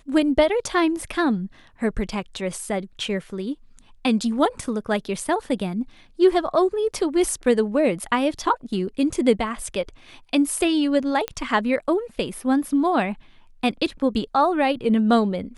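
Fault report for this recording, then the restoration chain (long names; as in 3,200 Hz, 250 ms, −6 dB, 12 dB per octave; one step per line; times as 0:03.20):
0:01.01: drop-out 2.1 ms
0:11.28: click −11 dBFS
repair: click removal
repair the gap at 0:01.01, 2.1 ms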